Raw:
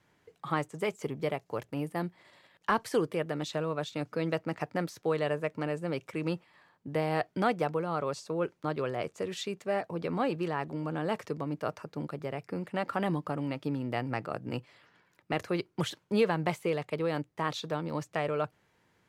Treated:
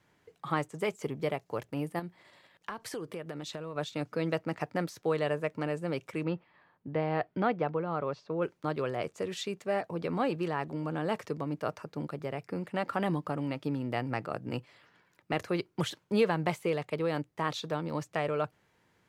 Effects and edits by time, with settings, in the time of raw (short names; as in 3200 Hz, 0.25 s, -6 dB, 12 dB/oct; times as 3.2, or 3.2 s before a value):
1.99–3.76 compressor, threshold -35 dBFS
6.23–8.42 air absorption 270 m